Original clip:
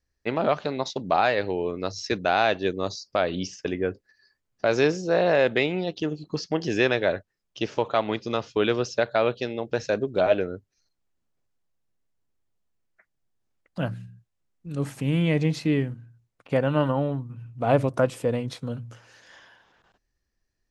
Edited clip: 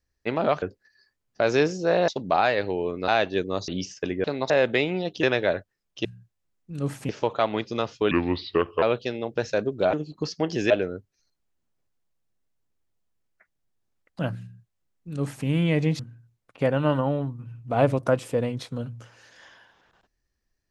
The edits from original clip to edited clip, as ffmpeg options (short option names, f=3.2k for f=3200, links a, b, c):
-filter_complex "[0:a]asplit=15[a][b][c][d][e][f][g][h][i][j][k][l][m][n][o];[a]atrim=end=0.622[p];[b]atrim=start=3.858:end=5.322[q];[c]atrim=start=0.878:end=1.882[r];[d]atrim=start=2.368:end=2.972[s];[e]atrim=start=3.298:end=3.862[t];[f]atrim=start=0.618:end=0.882[u];[g]atrim=start=5.318:end=6.052[v];[h]atrim=start=6.818:end=7.642[w];[i]atrim=start=14.008:end=15.052[x];[j]atrim=start=7.638:end=8.664[y];[k]atrim=start=8.66:end=9.18,asetpts=PTS-STARTPTS,asetrate=32193,aresample=44100[z];[l]atrim=start=9.176:end=10.292[aa];[m]atrim=start=6.048:end=6.822[ab];[n]atrim=start=10.288:end=15.582[ac];[o]atrim=start=15.898[ad];[p][q]acrossfade=d=0.004:c1=hsin:c2=hsin[ae];[ae][r]acrossfade=d=0.004:c1=hsin:c2=hsin[af];[af][s]acrossfade=d=0.004:c1=hsin:c2=hsin[ag];[ag][t]acrossfade=d=0.004:c1=hsin:c2=hsin[ah];[ah][u]acrossfade=d=0.004:c1=hsin:c2=hsin[ai];[ai][v]acrossfade=d=0.004:c1=hsin:c2=hsin[aj];[aj][w]acrossfade=d=0.004:c1=hsin:c2=hsin[ak];[ak][x]acrossfade=d=0.004:c1=hsin:c2=hsin[al];[al][y]acrossfade=d=0.004:c1=hsin:c2=hsin[am];[am][z]acrossfade=d=0.004:c1=hsin:c2=hsin[an];[an][aa]acrossfade=d=0.004:c1=hsin:c2=hsin[ao];[ao][ab]acrossfade=d=0.004:c1=hsin:c2=hsin[ap];[ap][ac]acrossfade=d=0.004:c1=hsin:c2=hsin[aq];[aq][ad]acrossfade=d=0.004:c1=hsin:c2=hsin"